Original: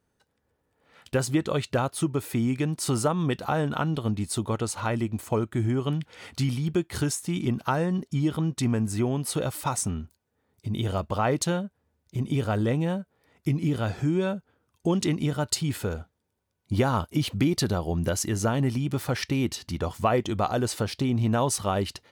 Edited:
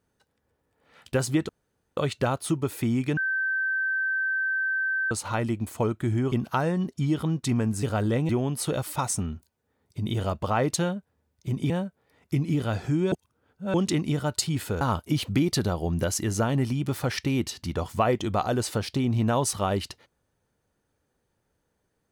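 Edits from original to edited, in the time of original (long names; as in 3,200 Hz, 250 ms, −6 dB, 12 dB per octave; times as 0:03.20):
0:01.49: splice in room tone 0.48 s
0:02.69–0:04.63: beep over 1,550 Hz −23.5 dBFS
0:05.84–0:07.46: remove
0:12.38–0:12.84: move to 0:08.97
0:14.26–0:14.88: reverse
0:15.95–0:16.86: remove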